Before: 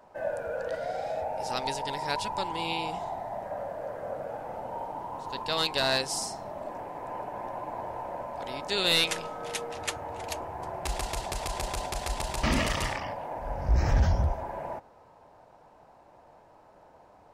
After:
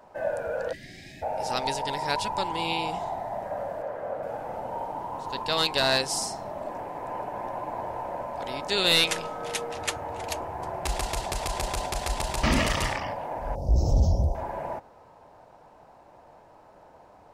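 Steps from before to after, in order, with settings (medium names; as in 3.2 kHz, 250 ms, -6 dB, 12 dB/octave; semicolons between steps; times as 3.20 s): 0.72–1.23 s: time-frequency box 400–1600 Hz -29 dB; 3.82–4.23 s: tone controls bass -5 dB, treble -8 dB; 13.55–14.35 s: Chebyshev band-stop 590–5500 Hz, order 2; trim +3 dB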